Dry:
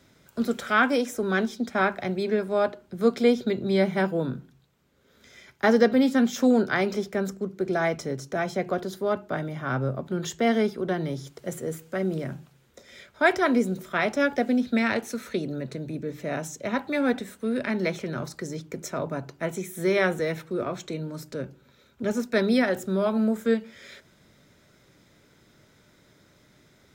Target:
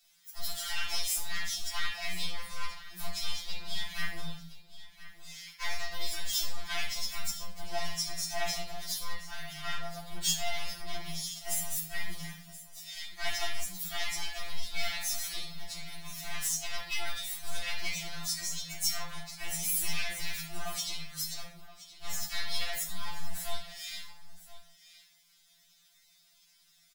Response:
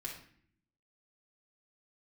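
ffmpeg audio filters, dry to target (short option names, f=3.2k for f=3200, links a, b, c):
-filter_complex "[0:a]agate=range=-8dB:threshold=-54dB:ratio=16:detection=peak,highshelf=f=6.2k:g=11,asplit=3[a][b][c];[b]asetrate=35002,aresample=44100,atempo=1.25992,volume=-16dB[d];[c]asetrate=55563,aresample=44100,atempo=0.793701,volume=-8dB[e];[a][d][e]amix=inputs=3:normalize=0,alimiter=limit=-17.5dB:level=0:latency=1:release=210,aeval=exprs='clip(val(0),-1,0.0282)':c=same,firequalizer=gain_entry='entry(100,0);entry(250,-24);entry(420,-25);entry(660,-3);entry(3200,12)':delay=0.05:min_phase=1,aecho=1:1:1023:0.158[f];[1:a]atrim=start_sample=2205,afade=t=out:st=0.23:d=0.01,atrim=end_sample=10584[g];[f][g]afir=irnorm=-1:irlink=0,afftfilt=real='re*2.83*eq(mod(b,8),0)':imag='im*2.83*eq(mod(b,8),0)':win_size=2048:overlap=0.75,volume=-3dB"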